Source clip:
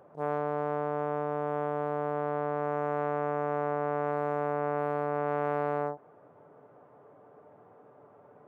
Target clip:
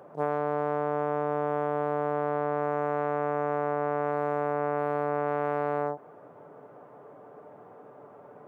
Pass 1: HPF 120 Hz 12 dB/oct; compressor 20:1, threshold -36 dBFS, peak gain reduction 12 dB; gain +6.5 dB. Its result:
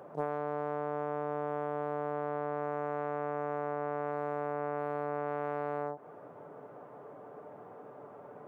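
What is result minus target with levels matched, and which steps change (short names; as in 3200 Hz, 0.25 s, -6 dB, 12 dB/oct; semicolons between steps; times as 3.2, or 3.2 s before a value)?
compressor: peak gain reduction +6.5 dB
change: compressor 20:1, threshold -29 dBFS, peak gain reduction 5.5 dB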